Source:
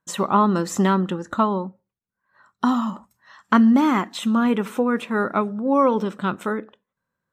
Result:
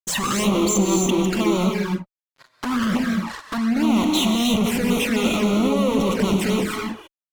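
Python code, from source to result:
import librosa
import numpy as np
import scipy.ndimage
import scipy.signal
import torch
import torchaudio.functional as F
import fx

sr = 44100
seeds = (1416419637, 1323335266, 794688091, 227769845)

y = fx.envelope_sharpen(x, sr, power=2.0, at=(0.43, 1.39))
y = fx.over_compress(y, sr, threshold_db=-24.0, ratio=-1.0)
y = fx.fuzz(y, sr, gain_db=36.0, gate_db=-45.0)
y = fx.rev_gated(y, sr, seeds[0], gate_ms=340, shape='rising', drr_db=1.0)
y = fx.env_flanger(y, sr, rest_ms=8.9, full_db=-9.0)
y = y * 10.0 ** (-6.0 / 20.0)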